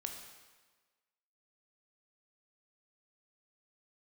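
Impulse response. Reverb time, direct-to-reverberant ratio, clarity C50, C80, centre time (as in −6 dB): 1.4 s, 3.0 dB, 5.0 dB, 7.0 dB, 38 ms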